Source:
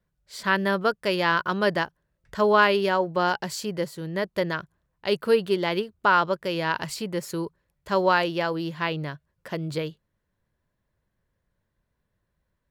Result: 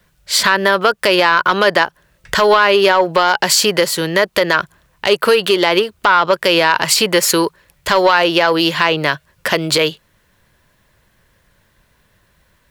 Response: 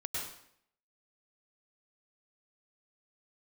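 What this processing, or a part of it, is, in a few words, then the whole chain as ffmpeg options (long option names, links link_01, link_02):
mastering chain: -filter_complex "[0:a]equalizer=frequency=2800:width_type=o:width=0.77:gain=2.5,acrossover=split=310|1500[link_01][link_02][link_03];[link_01]acompressor=threshold=-45dB:ratio=4[link_04];[link_02]acompressor=threshold=-22dB:ratio=4[link_05];[link_03]acompressor=threshold=-35dB:ratio=4[link_06];[link_04][link_05][link_06]amix=inputs=3:normalize=0,acompressor=threshold=-29dB:ratio=2,asoftclip=type=tanh:threshold=-20.5dB,tiltshelf=frequency=870:gain=-4.5,alimiter=level_in=22.5dB:limit=-1dB:release=50:level=0:latency=1,volume=-1dB"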